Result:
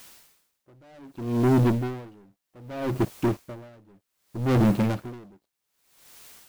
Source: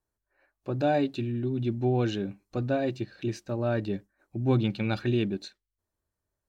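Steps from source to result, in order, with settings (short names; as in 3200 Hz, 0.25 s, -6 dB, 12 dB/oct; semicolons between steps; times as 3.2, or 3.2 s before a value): median filter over 25 samples; HPF 100 Hz 6 dB/oct; high shelf 2900 Hz -11.5 dB; sample leveller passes 5; in parallel at -11 dB: requantised 6-bit, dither triangular; on the sum: dB-linear tremolo 0.64 Hz, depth 36 dB; gain -1.5 dB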